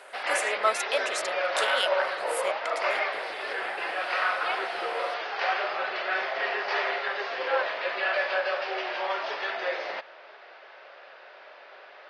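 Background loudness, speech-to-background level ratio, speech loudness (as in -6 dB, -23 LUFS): -28.5 LUFS, -3.0 dB, -31.5 LUFS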